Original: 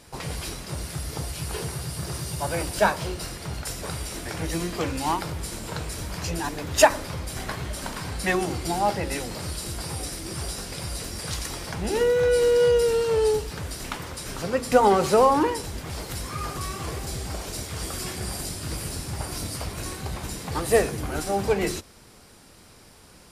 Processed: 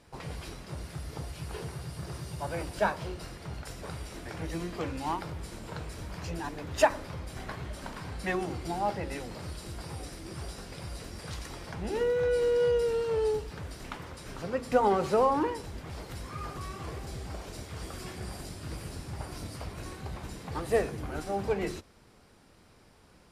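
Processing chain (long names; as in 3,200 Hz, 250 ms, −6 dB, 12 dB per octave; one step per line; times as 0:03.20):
high-shelf EQ 4,600 Hz −11 dB
level −6.5 dB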